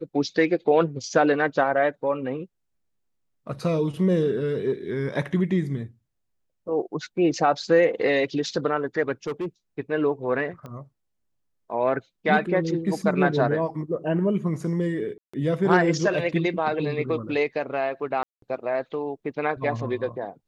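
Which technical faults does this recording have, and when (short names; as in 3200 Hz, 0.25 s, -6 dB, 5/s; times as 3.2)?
9.27–9.46 clipped -24.5 dBFS
10.66 pop -26 dBFS
15.18–15.34 gap 0.155 s
18.23–18.42 gap 0.193 s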